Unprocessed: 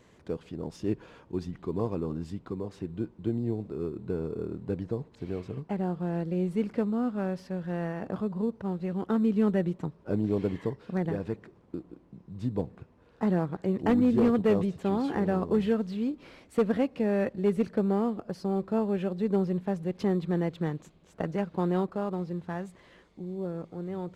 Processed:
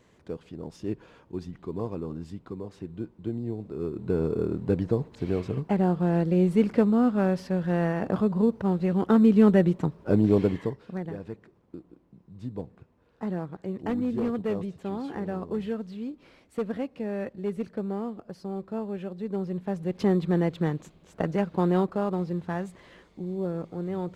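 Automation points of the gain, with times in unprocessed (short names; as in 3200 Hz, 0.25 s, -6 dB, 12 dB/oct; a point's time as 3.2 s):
3.57 s -2 dB
4.23 s +7 dB
10.37 s +7 dB
11.04 s -5 dB
19.32 s -5 dB
20.06 s +4 dB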